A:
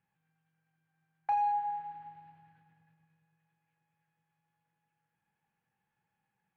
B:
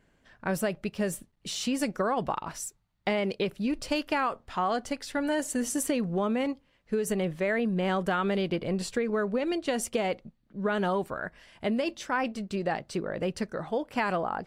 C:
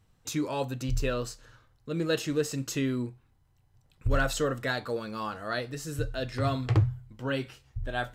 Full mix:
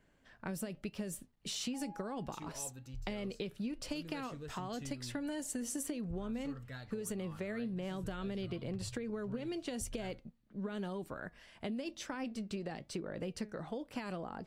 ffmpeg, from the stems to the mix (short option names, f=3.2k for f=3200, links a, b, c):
-filter_complex "[0:a]adelay=450,volume=-14.5dB[a];[1:a]acrossover=split=390|3000[b][c][d];[c]acompressor=threshold=-38dB:ratio=6[e];[b][e][d]amix=inputs=3:normalize=0,volume=0.5dB[f];[2:a]asubboost=boost=6.5:cutoff=150,acompressor=threshold=-22dB:ratio=6,adelay=2050,volume=-13.5dB[g];[a][f][g]amix=inputs=3:normalize=0,flanger=delay=3:depth=1.8:regen=89:speed=1:shape=triangular,acompressor=threshold=-36dB:ratio=6"